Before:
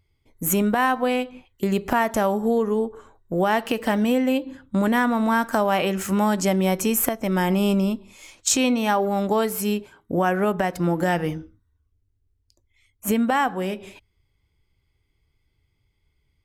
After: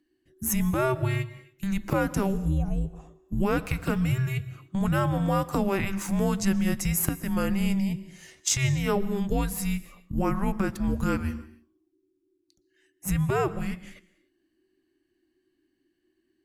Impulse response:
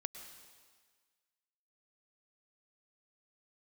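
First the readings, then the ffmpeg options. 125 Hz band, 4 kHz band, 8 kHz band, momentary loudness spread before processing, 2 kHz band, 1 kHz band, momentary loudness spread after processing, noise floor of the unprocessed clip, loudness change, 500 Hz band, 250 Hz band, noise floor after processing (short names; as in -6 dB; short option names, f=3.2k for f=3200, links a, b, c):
+3.0 dB, -6.5 dB, -4.0 dB, 8 LU, -7.5 dB, -10.0 dB, 10 LU, -71 dBFS, -5.0 dB, -8.0 dB, -5.0 dB, -74 dBFS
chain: -filter_complex "[0:a]afreqshift=-390,asplit=2[a][b];[1:a]atrim=start_sample=2205,afade=t=out:st=0.32:d=0.01,atrim=end_sample=14553,asetrate=38808,aresample=44100[c];[b][c]afir=irnorm=-1:irlink=0,volume=-4.5dB[d];[a][d]amix=inputs=2:normalize=0,volume=-7.5dB"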